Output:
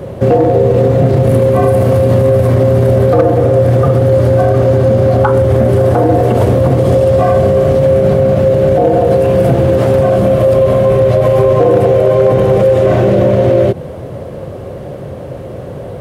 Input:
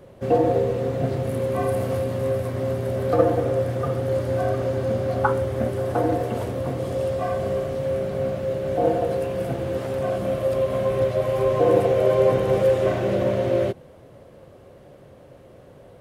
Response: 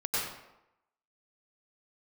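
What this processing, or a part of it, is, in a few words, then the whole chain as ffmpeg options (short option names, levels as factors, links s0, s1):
mastering chain: -af "highpass=53,equalizer=f=270:t=o:w=0.77:g=-3.5,acompressor=threshold=0.0501:ratio=2,tiltshelf=f=750:g=4.5,asoftclip=type=hard:threshold=0.168,alimiter=level_in=11.9:limit=0.891:release=50:level=0:latency=1,volume=0.891"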